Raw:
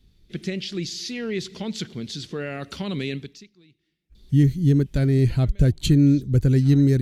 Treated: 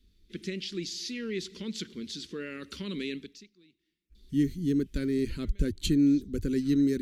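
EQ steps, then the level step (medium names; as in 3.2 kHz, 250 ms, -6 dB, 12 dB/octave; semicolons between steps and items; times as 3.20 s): peaking EQ 91 Hz +5 dB 0.77 oct; static phaser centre 300 Hz, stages 4; -4.5 dB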